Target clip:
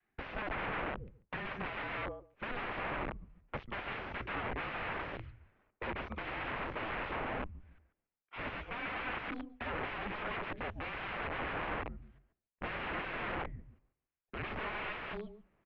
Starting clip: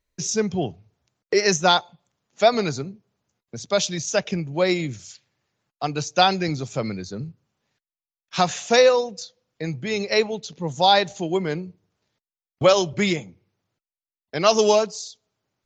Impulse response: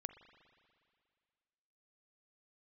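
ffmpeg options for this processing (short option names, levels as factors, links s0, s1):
-filter_complex "[0:a]asplit=2[s0][s1];[s1]adelay=141,lowpass=f=990:p=1,volume=0.631,asplit=2[s2][s3];[s3]adelay=141,lowpass=f=990:p=1,volume=0.31,asplit=2[s4][s5];[s5]adelay=141,lowpass=f=990:p=1,volume=0.31,asplit=2[s6][s7];[s7]adelay=141,lowpass=f=990:p=1,volume=0.31[s8];[s0][s2][s4][s6][s8]amix=inputs=5:normalize=0,areverse,acompressor=threshold=0.0316:ratio=20,areverse,aeval=exprs='(mod(63.1*val(0)+1,2)-1)/63.1':c=same,adynamicequalizer=threshold=0.00141:dfrequency=410:dqfactor=0.87:tfrequency=410:tqfactor=0.87:attack=5:release=100:ratio=0.375:range=2:mode=cutabove:tftype=bell,highpass=f=180:t=q:w=0.5412,highpass=f=180:t=q:w=1.307,lowpass=f=2800:t=q:w=0.5176,lowpass=f=2800:t=q:w=0.7071,lowpass=f=2800:t=q:w=1.932,afreqshift=-230,volume=2"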